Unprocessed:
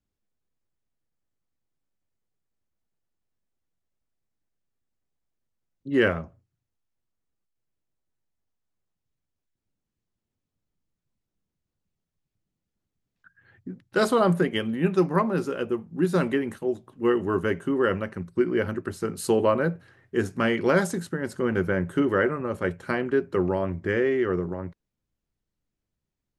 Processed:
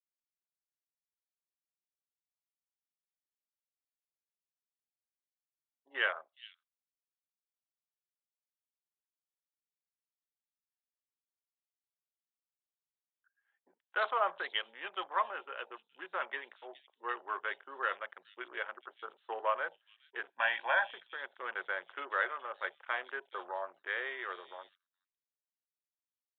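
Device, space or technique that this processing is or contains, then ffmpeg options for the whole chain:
musical greeting card: -filter_complex "[0:a]afwtdn=0.0126,asettb=1/sr,asplit=3[s0][s1][s2];[s0]atrim=end=20.334[s3];[s1]atrim=start=20.33:end=20.9,asetpts=PTS-STARTPTS,afade=t=in:d=0.004:c=qsin,afade=t=out:st=0.566:d=0.004:c=qsin,aecho=1:1:1.2:0.91,atrim=end_sample=25137[s4];[s2]atrim=start=20.896[s5];[s3][s4]acrossfade=d=0.004:c1=hsin:c2=qsin[s6];[s6][s5]acrossfade=d=0.004:c1=qsin:c2=hsin,acrossover=split=4100[s7][s8];[s8]adelay=420[s9];[s7][s9]amix=inputs=2:normalize=0,aresample=8000,aresample=44100,highpass=f=730:w=0.5412,highpass=f=730:w=1.3066,equalizer=f=3400:t=o:w=0.35:g=8,volume=0.596"

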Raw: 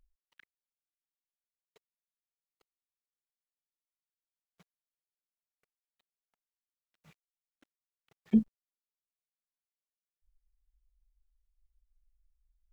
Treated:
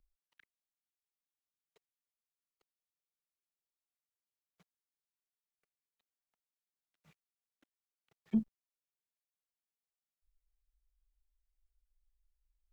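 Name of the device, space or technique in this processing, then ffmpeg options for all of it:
one-band saturation: -filter_complex "[0:a]acrossover=split=300|2300[s0][s1][s2];[s1]asoftclip=type=tanh:threshold=0.0251[s3];[s0][s3][s2]amix=inputs=3:normalize=0,volume=0.501"

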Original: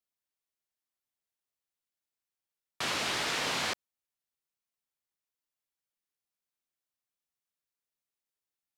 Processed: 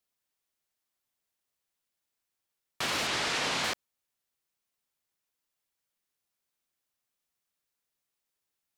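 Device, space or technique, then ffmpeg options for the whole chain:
limiter into clipper: -filter_complex "[0:a]alimiter=level_in=1.26:limit=0.0631:level=0:latency=1,volume=0.794,asoftclip=type=hard:threshold=0.0251,asettb=1/sr,asplit=3[s0][s1][s2];[s0]atrim=end=3.074[s3];[s1]atrim=start=3.07:end=3.64,asetpts=PTS-STARTPTS,afade=t=in:d=0.004:c=qsin,afade=t=out:st=0.566:d=0.004:c=qsin,lowpass=9000[s4];[s2]atrim=start=3.636[s5];[s3][s4]acrossfade=d=0.004:c1=hsin:c2=qsin[s6];[s6][s5]acrossfade=d=0.004:c1=qsin:c2=hsin,volume=2"

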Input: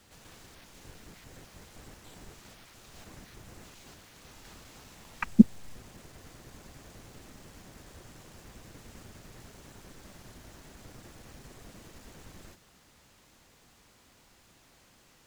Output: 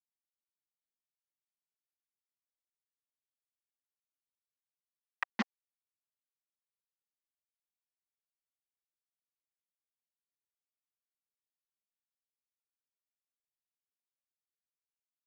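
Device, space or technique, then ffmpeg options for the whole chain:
hand-held game console: -af "acrusher=bits=3:mix=0:aa=0.000001,highpass=470,equalizer=f=470:t=q:w=4:g=-7,equalizer=f=760:t=q:w=4:g=5,equalizer=f=1100:t=q:w=4:g=4,equalizer=f=1900:t=q:w=4:g=10,equalizer=f=3700:t=q:w=4:g=-4,lowpass=f=4500:w=0.5412,lowpass=f=4500:w=1.3066,volume=0.473"

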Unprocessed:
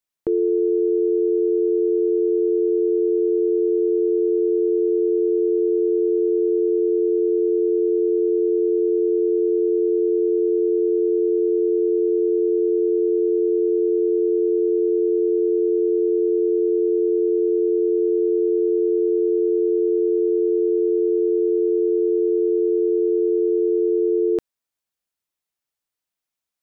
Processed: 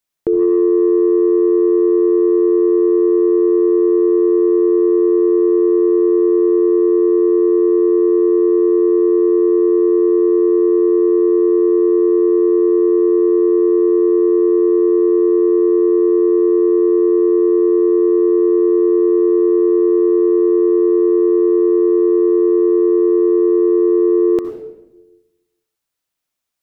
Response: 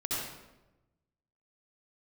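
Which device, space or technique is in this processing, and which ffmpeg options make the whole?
saturated reverb return: -filter_complex "[0:a]asplit=2[s0][s1];[1:a]atrim=start_sample=2205[s2];[s1][s2]afir=irnorm=-1:irlink=0,asoftclip=type=tanh:threshold=0.237,volume=0.355[s3];[s0][s3]amix=inputs=2:normalize=0,volume=1.5"

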